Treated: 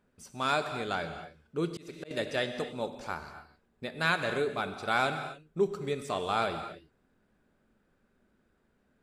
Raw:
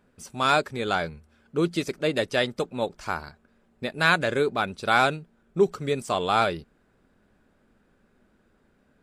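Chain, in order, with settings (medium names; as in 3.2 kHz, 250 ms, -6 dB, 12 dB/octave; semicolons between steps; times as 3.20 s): gated-style reverb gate 300 ms flat, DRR 7.5 dB; 1.65–2.11 s: slow attack 290 ms; trim -7.5 dB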